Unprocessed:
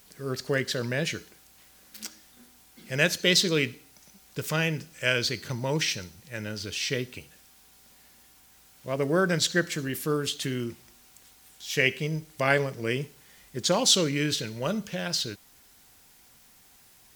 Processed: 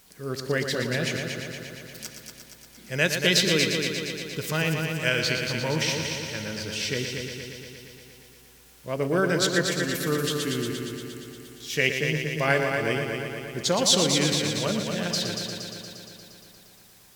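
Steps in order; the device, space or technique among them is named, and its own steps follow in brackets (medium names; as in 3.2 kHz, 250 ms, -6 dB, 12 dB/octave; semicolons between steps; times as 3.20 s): multi-head tape echo (multi-head delay 117 ms, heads first and second, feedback 67%, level -8 dB; wow and flutter 9.1 cents)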